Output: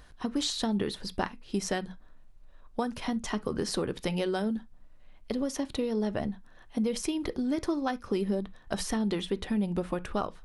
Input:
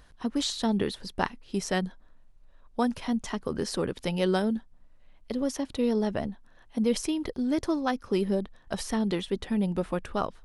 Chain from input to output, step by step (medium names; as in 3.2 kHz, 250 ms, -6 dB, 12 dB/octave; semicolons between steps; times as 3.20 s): compression, threshold -28 dBFS, peak gain reduction 8.5 dB; on a send: reverberation, pre-delay 3 ms, DRR 11.5 dB; on the sum: trim +2 dB